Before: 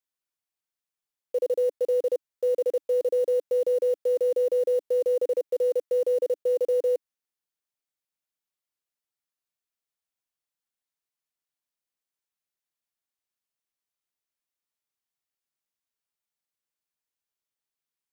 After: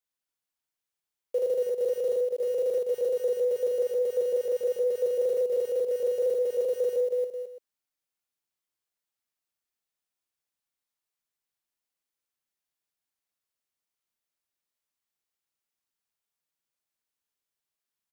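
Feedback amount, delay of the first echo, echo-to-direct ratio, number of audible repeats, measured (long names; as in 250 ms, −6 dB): repeats not evenly spaced, 47 ms, −1.0 dB, 5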